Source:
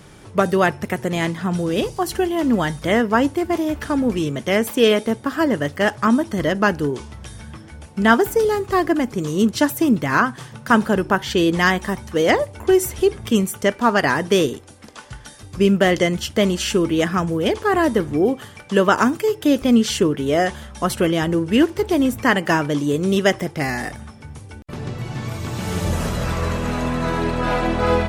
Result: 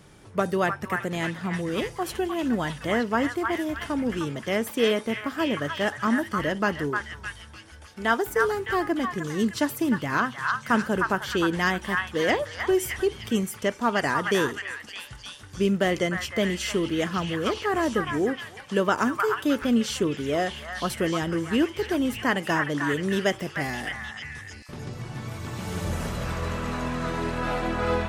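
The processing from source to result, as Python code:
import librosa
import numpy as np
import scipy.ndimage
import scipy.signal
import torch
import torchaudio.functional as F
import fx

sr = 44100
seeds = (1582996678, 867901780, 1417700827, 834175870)

y = fx.peak_eq(x, sr, hz=170.0, db=-11.5, octaves=1.1, at=(7.32, 8.28))
y = fx.echo_stepped(y, sr, ms=306, hz=1400.0, octaves=0.7, feedback_pct=70, wet_db=-0.5)
y = y * librosa.db_to_amplitude(-7.5)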